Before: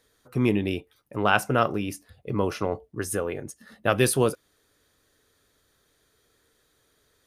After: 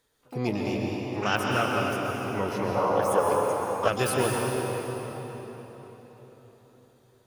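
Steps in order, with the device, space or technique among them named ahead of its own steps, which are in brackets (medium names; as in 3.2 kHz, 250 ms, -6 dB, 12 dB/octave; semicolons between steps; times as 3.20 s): shimmer-style reverb (harmony voices +12 st -7 dB; reverberation RT60 4.4 s, pre-delay 117 ms, DRR -2 dB); 2.75–3.88 s: high-order bell 790 Hz +11 dB; trim -6.5 dB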